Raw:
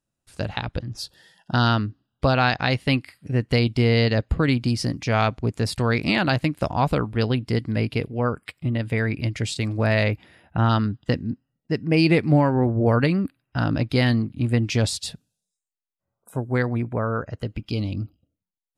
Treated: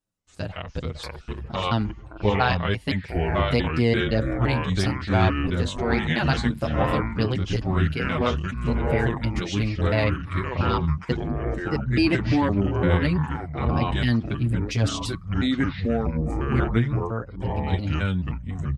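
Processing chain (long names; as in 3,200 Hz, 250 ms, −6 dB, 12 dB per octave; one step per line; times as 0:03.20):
pitch shifter gated in a rhythm −4.5 semitones, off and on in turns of 171 ms
delay with pitch and tempo change per echo 330 ms, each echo −4 semitones, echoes 3
barber-pole flanger 7.4 ms −0.4 Hz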